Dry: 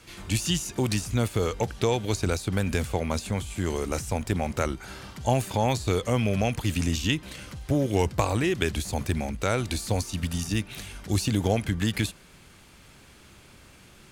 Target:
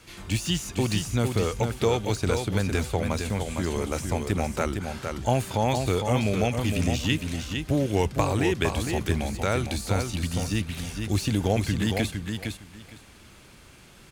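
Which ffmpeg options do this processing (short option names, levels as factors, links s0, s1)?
-filter_complex "[0:a]acrossover=split=4200[s0][s1];[s1]asoftclip=type=tanh:threshold=0.0237[s2];[s0][s2]amix=inputs=2:normalize=0,aecho=1:1:459|918|1377:0.531|0.0956|0.0172"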